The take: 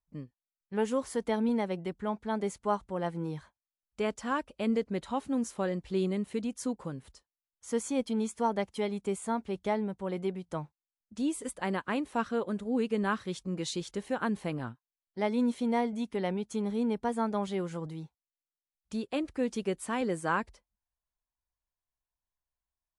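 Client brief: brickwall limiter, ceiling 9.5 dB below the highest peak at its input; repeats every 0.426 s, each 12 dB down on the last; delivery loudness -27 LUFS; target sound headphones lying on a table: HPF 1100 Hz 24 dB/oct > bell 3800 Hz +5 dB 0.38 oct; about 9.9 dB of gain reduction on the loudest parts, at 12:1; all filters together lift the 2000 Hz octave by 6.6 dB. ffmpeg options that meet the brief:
-af "equalizer=f=2k:t=o:g=8.5,acompressor=threshold=-33dB:ratio=12,alimiter=level_in=5dB:limit=-24dB:level=0:latency=1,volume=-5dB,highpass=f=1.1k:w=0.5412,highpass=f=1.1k:w=1.3066,equalizer=f=3.8k:t=o:w=0.38:g=5,aecho=1:1:426|852|1278:0.251|0.0628|0.0157,volume=19.5dB"

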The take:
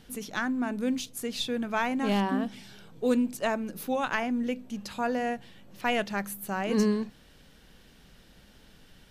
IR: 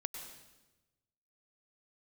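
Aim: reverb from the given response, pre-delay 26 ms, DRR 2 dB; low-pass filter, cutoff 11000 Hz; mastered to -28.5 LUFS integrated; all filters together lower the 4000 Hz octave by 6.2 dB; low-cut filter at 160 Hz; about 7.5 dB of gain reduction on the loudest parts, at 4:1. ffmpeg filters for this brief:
-filter_complex "[0:a]highpass=160,lowpass=11k,equalizer=f=4k:t=o:g=-8.5,acompressor=threshold=-30dB:ratio=4,asplit=2[a][b];[1:a]atrim=start_sample=2205,adelay=26[c];[b][c]afir=irnorm=-1:irlink=0,volume=-1.5dB[d];[a][d]amix=inputs=2:normalize=0,volume=5dB"

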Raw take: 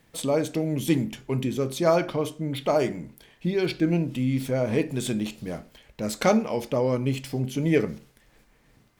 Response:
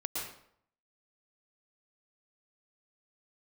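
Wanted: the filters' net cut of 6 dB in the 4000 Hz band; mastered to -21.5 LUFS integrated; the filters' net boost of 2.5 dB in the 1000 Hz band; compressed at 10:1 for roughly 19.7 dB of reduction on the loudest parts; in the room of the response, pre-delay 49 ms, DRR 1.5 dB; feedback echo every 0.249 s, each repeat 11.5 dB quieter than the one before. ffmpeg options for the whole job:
-filter_complex "[0:a]equalizer=f=1k:t=o:g=4,equalizer=f=4k:t=o:g=-8,acompressor=threshold=-36dB:ratio=10,aecho=1:1:249|498|747:0.266|0.0718|0.0194,asplit=2[a][b];[1:a]atrim=start_sample=2205,adelay=49[c];[b][c]afir=irnorm=-1:irlink=0,volume=-4.5dB[d];[a][d]amix=inputs=2:normalize=0,volume=17dB"

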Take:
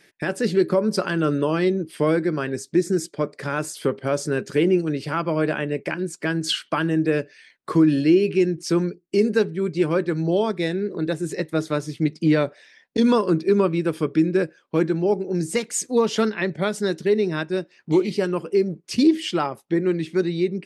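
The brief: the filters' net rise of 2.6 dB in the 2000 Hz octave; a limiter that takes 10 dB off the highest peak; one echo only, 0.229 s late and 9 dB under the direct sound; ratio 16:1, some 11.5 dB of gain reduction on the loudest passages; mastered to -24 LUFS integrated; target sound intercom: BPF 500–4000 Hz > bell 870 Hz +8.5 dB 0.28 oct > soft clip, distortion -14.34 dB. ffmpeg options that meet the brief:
-af "equalizer=f=2k:t=o:g=3.5,acompressor=threshold=-24dB:ratio=16,alimiter=limit=-22dB:level=0:latency=1,highpass=500,lowpass=4k,equalizer=f=870:t=o:w=0.28:g=8.5,aecho=1:1:229:0.355,asoftclip=threshold=-30.5dB,volume=14.5dB"

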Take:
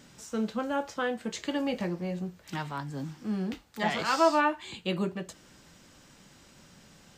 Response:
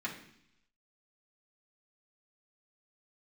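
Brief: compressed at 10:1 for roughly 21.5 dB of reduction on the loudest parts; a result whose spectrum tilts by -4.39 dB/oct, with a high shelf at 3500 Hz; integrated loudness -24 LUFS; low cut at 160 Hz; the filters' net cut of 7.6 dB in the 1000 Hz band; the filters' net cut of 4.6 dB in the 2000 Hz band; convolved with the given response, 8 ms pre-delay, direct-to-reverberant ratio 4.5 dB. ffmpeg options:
-filter_complex "[0:a]highpass=160,equalizer=f=1k:t=o:g=-9,equalizer=f=2k:t=o:g=-3.5,highshelf=f=3.5k:g=3.5,acompressor=threshold=-45dB:ratio=10,asplit=2[a][b];[1:a]atrim=start_sample=2205,adelay=8[c];[b][c]afir=irnorm=-1:irlink=0,volume=-8dB[d];[a][d]amix=inputs=2:normalize=0,volume=23.5dB"

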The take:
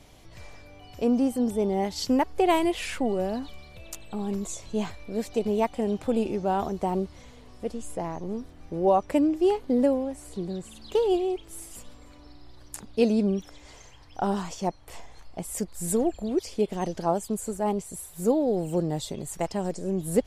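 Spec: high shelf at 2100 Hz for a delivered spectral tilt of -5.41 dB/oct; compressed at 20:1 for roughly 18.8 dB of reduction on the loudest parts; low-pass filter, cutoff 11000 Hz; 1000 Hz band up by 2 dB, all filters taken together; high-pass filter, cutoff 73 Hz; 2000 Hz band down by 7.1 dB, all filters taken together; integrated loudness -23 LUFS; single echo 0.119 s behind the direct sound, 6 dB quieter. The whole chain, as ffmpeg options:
-af "highpass=73,lowpass=11k,equalizer=f=1k:t=o:g=5,equalizer=f=2k:t=o:g=-8,highshelf=f=2.1k:g=-4,acompressor=threshold=-35dB:ratio=20,aecho=1:1:119:0.501,volume=17dB"

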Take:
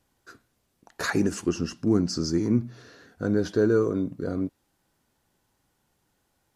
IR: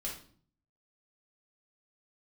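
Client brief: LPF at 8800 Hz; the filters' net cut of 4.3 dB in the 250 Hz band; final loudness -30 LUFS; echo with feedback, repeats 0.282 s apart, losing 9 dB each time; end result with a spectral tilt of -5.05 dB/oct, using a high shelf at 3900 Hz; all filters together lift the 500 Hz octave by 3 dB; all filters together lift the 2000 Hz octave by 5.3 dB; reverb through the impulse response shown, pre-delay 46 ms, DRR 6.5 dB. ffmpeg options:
-filter_complex "[0:a]lowpass=8.8k,equalizer=f=250:t=o:g=-9,equalizer=f=500:t=o:g=7,equalizer=f=2k:t=o:g=6,highshelf=f=3.9k:g=4,aecho=1:1:282|564|846|1128:0.355|0.124|0.0435|0.0152,asplit=2[a][b];[1:a]atrim=start_sample=2205,adelay=46[c];[b][c]afir=irnorm=-1:irlink=0,volume=-7dB[d];[a][d]amix=inputs=2:normalize=0,volume=-5.5dB"

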